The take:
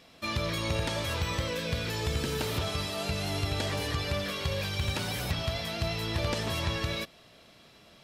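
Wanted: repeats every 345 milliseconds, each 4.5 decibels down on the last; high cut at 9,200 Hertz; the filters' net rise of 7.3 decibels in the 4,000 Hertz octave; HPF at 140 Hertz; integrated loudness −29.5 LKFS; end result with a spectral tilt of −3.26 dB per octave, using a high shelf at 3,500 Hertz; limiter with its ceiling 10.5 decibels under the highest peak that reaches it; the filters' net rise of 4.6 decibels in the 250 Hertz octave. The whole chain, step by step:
high-pass filter 140 Hz
low-pass filter 9,200 Hz
parametric band 250 Hz +7.5 dB
high-shelf EQ 3,500 Hz +4.5 dB
parametric band 4,000 Hz +6 dB
brickwall limiter −24 dBFS
repeating echo 345 ms, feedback 60%, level −4.5 dB
level +0.5 dB

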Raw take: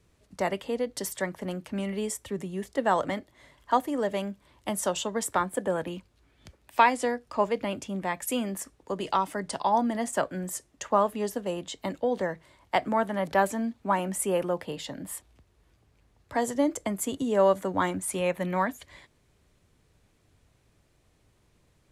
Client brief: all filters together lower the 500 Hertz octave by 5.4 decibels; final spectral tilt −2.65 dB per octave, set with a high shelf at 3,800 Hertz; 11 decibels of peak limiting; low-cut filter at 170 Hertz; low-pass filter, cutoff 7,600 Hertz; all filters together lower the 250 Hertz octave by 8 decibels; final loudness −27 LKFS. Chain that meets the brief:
high-pass filter 170 Hz
low-pass filter 7,600 Hz
parametric band 250 Hz −7.5 dB
parametric band 500 Hz −5 dB
high-shelf EQ 3,800 Hz +4.5 dB
level +7.5 dB
brickwall limiter −12 dBFS

